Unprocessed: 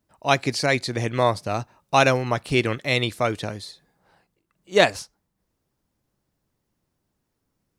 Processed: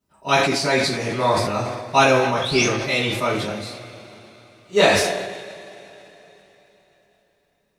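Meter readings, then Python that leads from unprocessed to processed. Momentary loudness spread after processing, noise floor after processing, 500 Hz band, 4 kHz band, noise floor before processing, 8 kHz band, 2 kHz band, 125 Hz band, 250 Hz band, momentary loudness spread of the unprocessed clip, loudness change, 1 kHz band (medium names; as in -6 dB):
16 LU, -67 dBFS, +3.0 dB, +4.5 dB, -77 dBFS, +7.0 dB, +3.0 dB, -0.5 dB, +3.0 dB, 12 LU, +3.0 dB, +3.5 dB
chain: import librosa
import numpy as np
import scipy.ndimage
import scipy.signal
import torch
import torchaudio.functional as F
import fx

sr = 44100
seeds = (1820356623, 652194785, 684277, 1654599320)

y = fx.spec_paint(x, sr, seeds[0], shape='rise', start_s=2.41, length_s=0.24, low_hz=3200.0, high_hz=6700.0, level_db=-30.0)
y = fx.rev_double_slope(y, sr, seeds[1], early_s=0.32, late_s=3.9, knee_db=-21, drr_db=-10.0)
y = fx.sustainer(y, sr, db_per_s=41.0)
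y = F.gain(torch.from_numpy(y), -8.5).numpy()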